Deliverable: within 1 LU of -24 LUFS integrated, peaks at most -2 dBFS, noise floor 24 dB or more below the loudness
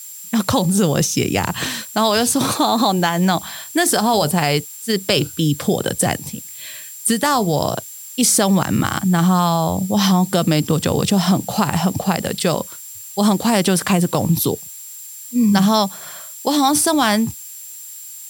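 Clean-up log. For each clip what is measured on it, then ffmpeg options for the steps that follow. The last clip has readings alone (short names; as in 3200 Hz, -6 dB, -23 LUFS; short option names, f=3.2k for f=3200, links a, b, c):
steady tone 7400 Hz; tone level -36 dBFS; noise floor -35 dBFS; noise floor target -42 dBFS; loudness -17.5 LUFS; peak -2.0 dBFS; loudness target -24.0 LUFS
-> -af "bandreject=f=7.4k:w=30"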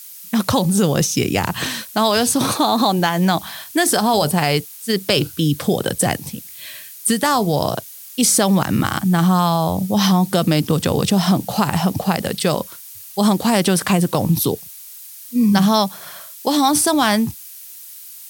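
steady tone none; noise floor -38 dBFS; noise floor target -42 dBFS
-> -af "afftdn=nr=6:nf=-38"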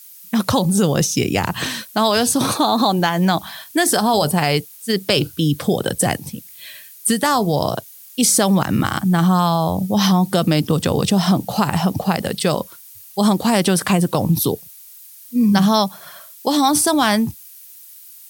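noise floor -42 dBFS; loudness -18.0 LUFS; peak -2.0 dBFS; loudness target -24.0 LUFS
-> -af "volume=-6dB"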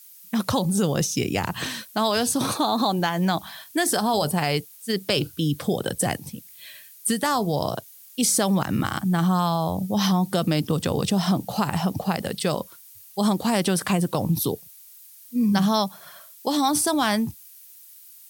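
loudness -24.0 LUFS; peak -8.0 dBFS; noise floor -48 dBFS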